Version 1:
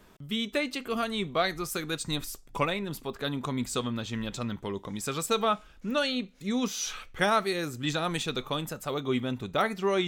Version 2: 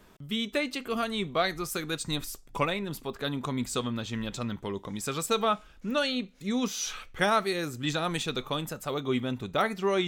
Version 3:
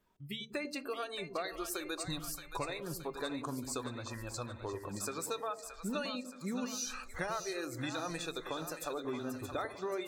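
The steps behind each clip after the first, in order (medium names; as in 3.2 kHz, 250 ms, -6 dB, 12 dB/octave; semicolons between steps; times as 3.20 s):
no audible change
compression 6:1, threshold -35 dBFS, peak gain reduction 14.5 dB; spectral noise reduction 20 dB; two-band feedback delay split 610 Hz, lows 98 ms, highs 623 ms, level -8 dB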